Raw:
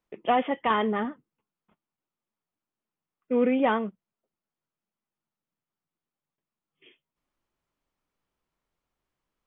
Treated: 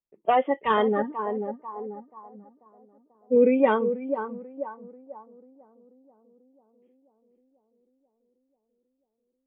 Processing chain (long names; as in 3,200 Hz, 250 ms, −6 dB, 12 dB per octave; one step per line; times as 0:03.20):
0:01.02–0:03.36: harmonic-percussive split with one part muted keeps harmonic
tape delay 489 ms, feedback 78%, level −4.5 dB, low-pass 1,300 Hz
dynamic equaliser 500 Hz, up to +7 dB, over −39 dBFS, Q 1.2
low-pass that shuts in the quiet parts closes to 840 Hz, open at −16 dBFS
noise reduction from a noise print of the clip's start 15 dB